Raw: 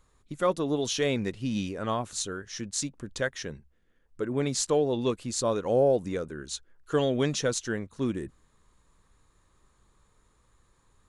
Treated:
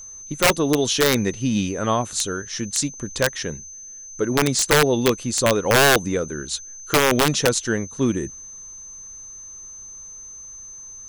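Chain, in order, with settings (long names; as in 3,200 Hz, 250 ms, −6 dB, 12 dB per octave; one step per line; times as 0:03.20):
wrap-around overflow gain 17.5 dB
steady tone 6,200 Hz −45 dBFS
level +8.5 dB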